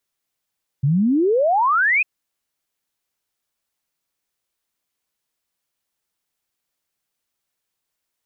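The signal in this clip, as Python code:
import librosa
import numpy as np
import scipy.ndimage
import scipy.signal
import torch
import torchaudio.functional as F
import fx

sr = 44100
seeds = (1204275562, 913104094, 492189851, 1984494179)

y = fx.ess(sr, length_s=1.2, from_hz=130.0, to_hz=2600.0, level_db=-14.0)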